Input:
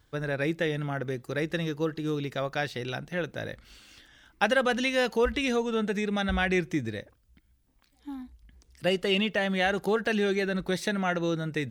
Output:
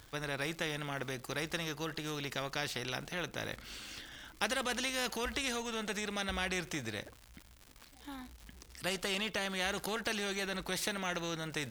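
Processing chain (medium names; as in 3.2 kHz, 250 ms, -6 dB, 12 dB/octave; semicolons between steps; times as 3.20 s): crackle 180 per s -49 dBFS; spectrum-flattening compressor 2:1; trim -8 dB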